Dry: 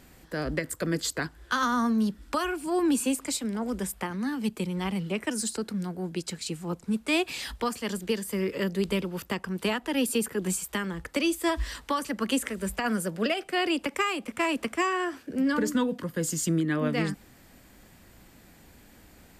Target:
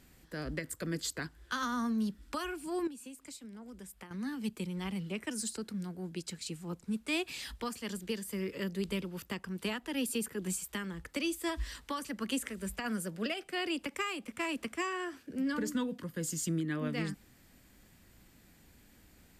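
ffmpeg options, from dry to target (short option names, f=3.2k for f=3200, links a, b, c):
-filter_complex "[0:a]equalizer=f=720:t=o:w=2:g=-5,asettb=1/sr,asplit=3[a][b][c];[a]atrim=end=2.874[d];[b]atrim=start=2.87:end=4.11,asetpts=PTS-STARTPTS,afade=t=in:d=0.004:c=qsin,afade=t=out:st=1.236:d=0.004:c=qsin,acompressor=threshold=-40dB:ratio=6[e];[c]atrim=start=4.106[f];[d][e]acrossfade=d=0.004:c1=hsin:c2=qsin[g];[g][f]acrossfade=d=0.004:c1=qsin:c2=hsin,volume=-6dB"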